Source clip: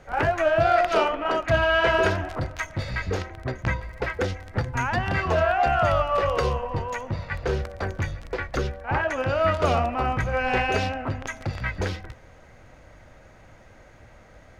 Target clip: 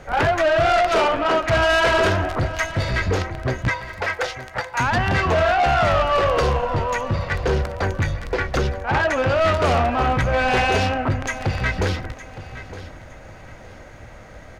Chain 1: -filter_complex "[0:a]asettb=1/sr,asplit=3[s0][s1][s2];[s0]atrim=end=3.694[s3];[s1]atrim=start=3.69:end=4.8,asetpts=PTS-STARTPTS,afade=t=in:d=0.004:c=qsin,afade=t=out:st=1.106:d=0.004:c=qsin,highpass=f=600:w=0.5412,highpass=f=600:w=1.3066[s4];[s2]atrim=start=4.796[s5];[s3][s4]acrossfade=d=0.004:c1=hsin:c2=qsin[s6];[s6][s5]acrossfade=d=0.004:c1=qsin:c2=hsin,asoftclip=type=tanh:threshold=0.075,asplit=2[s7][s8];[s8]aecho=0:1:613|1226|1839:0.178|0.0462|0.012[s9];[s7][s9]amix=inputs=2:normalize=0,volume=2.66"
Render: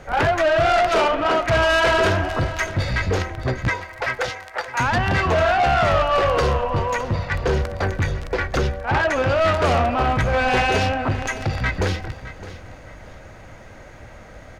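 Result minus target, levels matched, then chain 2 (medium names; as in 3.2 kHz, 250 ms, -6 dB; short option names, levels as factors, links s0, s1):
echo 301 ms early
-filter_complex "[0:a]asettb=1/sr,asplit=3[s0][s1][s2];[s0]atrim=end=3.694[s3];[s1]atrim=start=3.69:end=4.8,asetpts=PTS-STARTPTS,afade=t=in:d=0.004:c=qsin,afade=t=out:st=1.106:d=0.004:c=qsin,highpass=f=600:w=0.5412,highpass=f=600:w=1.3066[s4];[s2]atrim=start=4.796[s5];[s3][s4]acrossfade=d=0.004:c1=hsin:c2=qsin[s6];[s6][s5]acrossfade=d=0.004:c1=qsin:c2=hsin,asoftclip=type=tanh:threshold=0.075,asplit=2[s7][s8];[s8]aecho=0:1:914|1828|2742:0.178|0.0462|0.012[s9];[s7][s9]amix=inputs=2:normalize=0,volume=2.66"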